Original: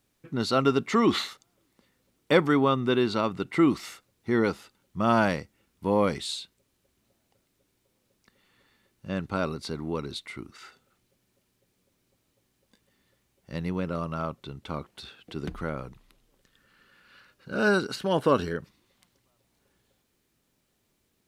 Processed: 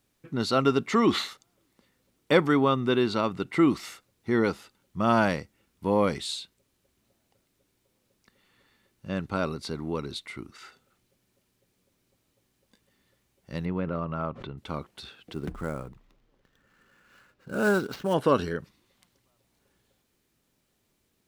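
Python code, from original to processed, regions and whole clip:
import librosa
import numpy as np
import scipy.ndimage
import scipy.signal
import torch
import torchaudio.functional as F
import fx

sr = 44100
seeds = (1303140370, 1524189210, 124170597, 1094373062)

y = fx.chain(x, sr, fx.lowpass(hz=2300.0, slope=12),
    fx.pre_swell(db_per_s=66.0), at=(13.65, 14.58))
y = fx.chain(y, sr, fx.sample_hold(seeds[0], rate_hz=9300.0, jitter_pct=20),
    fx.high_shelf(hz=3000.0, db=-10.0), at=(15.33, 18.14))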